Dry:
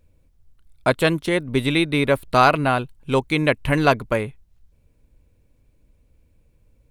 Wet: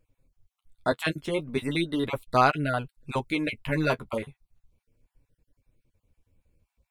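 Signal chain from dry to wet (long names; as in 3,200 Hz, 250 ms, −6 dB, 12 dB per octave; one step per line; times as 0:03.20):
time-frequency cells dropped at random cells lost 26%
flanger 0.37 Hz, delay 6.3 ms, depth 7.2 ms, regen −21%
level −3.5 dB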